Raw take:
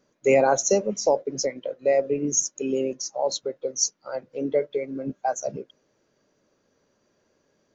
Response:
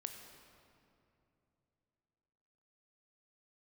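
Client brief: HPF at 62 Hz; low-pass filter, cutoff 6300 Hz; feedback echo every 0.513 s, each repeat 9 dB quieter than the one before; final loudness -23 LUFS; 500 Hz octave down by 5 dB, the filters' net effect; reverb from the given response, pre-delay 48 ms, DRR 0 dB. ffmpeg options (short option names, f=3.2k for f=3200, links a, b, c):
-filter_complex "[0:a]highpass=62,lowpass=6.3k,equalizer=f=500:t=o:g=-6,aecho=1:1:513|1026|1539|2052:0.355|0.124|0.0435|0.0152,asplit=2[a][b];[1:a]atrim=start_sample=2205,adelay=48[c];[b][c]afir=irnorm=-1:irlink=0,volume=2.5dB[d];[a][d]amix=inputs=2:normalize=0,volume=2.5dB"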